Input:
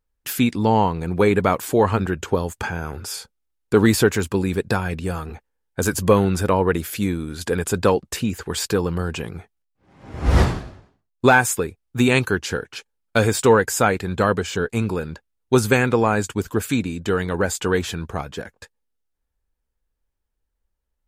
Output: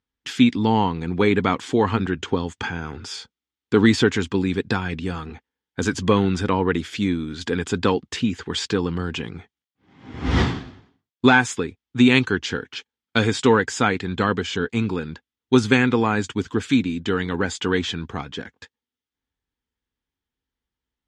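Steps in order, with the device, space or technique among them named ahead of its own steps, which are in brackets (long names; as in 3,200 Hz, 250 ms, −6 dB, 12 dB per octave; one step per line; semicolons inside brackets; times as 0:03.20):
car door speaker (loudspeaker in its box 81–6,600 Hz, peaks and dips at 260 Hz +7 dB, 590 Hz −10 dB, 2,000 Hz +4 dB, 3,300 Hz +8 dB)
level −1.5 dB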